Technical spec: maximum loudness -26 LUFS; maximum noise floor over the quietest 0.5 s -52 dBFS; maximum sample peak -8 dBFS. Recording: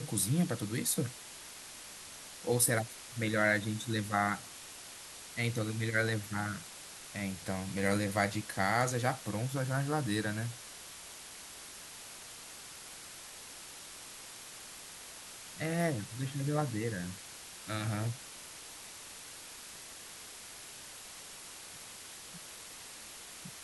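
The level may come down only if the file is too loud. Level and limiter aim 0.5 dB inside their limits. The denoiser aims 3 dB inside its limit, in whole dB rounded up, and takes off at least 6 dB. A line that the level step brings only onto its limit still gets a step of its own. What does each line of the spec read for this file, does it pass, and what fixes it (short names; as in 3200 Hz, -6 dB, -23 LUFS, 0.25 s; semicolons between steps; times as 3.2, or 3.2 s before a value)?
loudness -36.5 LUFS: OK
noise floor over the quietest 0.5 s -49 dBFS: fail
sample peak -13.0 dBFS: OK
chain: denoiser 6 dB, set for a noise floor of -49 dBFS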